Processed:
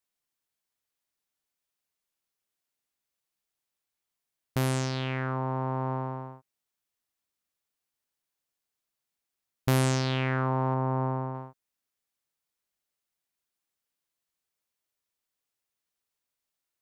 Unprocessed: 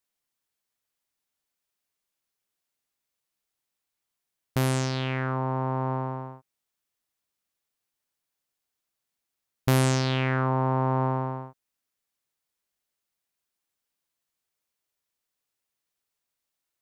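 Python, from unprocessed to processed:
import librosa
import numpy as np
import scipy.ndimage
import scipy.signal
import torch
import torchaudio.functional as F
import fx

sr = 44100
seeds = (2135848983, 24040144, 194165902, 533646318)

y = fx.spacing_loss(x, sr, db_at_10k=20, at=(10.74, 11.35))
y = F.gain(torch.from_numpy(y), -2.5).numpy()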